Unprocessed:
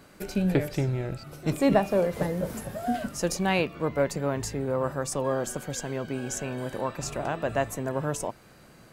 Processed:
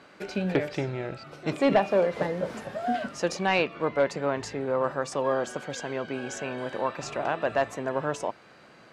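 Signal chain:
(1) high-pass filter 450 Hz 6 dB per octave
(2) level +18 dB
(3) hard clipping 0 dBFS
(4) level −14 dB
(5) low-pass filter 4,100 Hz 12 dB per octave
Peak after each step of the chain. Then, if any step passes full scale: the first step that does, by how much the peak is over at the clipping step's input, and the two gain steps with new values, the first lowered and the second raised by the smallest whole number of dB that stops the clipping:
−10.5, +7.5, 0.0, −14.0, −13.5 dBFS
step 2, 7.5 dB
step 2 +10 dB, step 4 −6 dB

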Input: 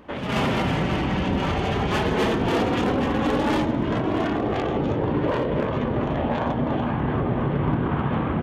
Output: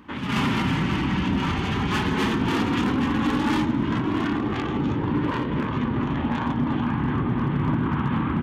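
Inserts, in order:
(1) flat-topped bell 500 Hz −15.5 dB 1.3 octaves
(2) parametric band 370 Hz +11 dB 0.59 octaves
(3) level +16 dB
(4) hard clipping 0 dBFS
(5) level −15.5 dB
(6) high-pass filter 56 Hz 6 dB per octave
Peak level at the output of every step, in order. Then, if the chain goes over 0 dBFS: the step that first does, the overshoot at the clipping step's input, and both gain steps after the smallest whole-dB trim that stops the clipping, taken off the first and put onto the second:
−12.0, −10.5, +5.5, 0.0, −15.5, −13.5 dBFS
step 3, 5.5 dB
step 3 +10 dB, step 5 −9.5 dB

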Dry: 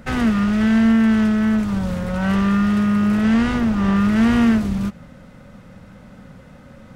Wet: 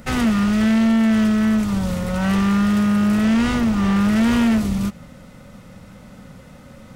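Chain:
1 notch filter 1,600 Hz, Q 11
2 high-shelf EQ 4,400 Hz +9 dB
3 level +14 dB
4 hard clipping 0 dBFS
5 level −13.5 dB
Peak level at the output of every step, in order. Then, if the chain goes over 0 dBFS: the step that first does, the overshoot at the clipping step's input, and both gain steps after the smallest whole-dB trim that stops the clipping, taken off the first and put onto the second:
−6.5, −6.0, +8.0, 0.0, −13.5 dBFS
step 3, 8.0 dB
step 3 +6 dB, step 5 −5.5 dB

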